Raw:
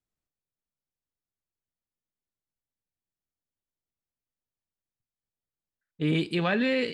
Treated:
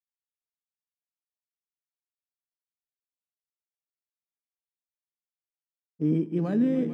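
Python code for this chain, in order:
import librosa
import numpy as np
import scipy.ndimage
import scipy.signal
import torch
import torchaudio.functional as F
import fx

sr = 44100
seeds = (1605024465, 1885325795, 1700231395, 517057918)

p1 = fx.law_mismatch(x, sr, coded='A')
p2 = np.repeat(scipy.signal.resample_poly(p1, 1, 8), 8)[:len(p1)]
p3 = fx.bandpass_q(p2, sr, hz=240.0, q=1.6)
p4 = p3 + fx.echo_swell(p3, sr, ms=149, loudest=5, wet_db=-13.5, dry=0)
y = F.gain(torch.from_numpy(p4), 5.5).numpy()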